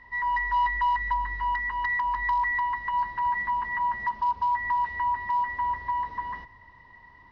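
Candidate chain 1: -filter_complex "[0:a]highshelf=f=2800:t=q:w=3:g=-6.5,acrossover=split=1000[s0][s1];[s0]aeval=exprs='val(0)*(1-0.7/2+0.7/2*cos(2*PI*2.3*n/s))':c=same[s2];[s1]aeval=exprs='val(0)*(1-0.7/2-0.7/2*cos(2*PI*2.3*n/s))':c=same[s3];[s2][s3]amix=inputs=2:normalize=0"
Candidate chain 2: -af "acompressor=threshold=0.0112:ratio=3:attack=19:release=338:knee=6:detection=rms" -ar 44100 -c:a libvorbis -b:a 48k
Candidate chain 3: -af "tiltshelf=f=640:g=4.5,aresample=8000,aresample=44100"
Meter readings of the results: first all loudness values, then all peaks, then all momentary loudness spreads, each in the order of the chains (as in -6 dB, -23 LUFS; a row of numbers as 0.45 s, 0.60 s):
-28.0 LUFS, -37.5 LUFS, -29.0 LUFS; -18.5 dBFS, -28.5 dBFS, -19.0 dBFS; 6 LU, 8 LU, 4 LU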